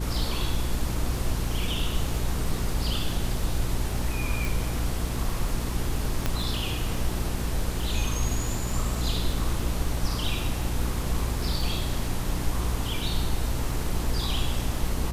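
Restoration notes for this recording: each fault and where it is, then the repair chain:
surface crackle 21 per second −32 dBFS
mains hum 60 Hz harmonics 6 −31 dBFS
0:04.45: click
0:06.26: click −10 dBFS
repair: click removal
hum removal 60 Hz, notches 6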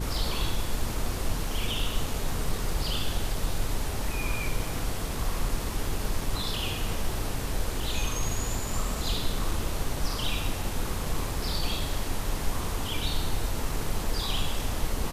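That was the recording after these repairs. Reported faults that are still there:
none of them is left

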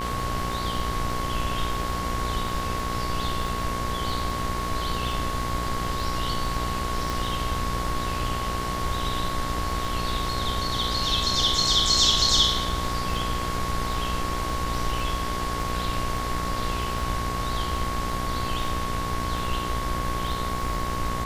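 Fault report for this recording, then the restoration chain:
mains buzz 60 Hz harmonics 38 −32 dBFS
surface crackle 34 per second −33 dBFS
whistle 1,100 Hz −30 dBFS
0:07.10: click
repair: click removal
hum removal 60 Hz, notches 38
notch filter 1,100 Hz, Q 30

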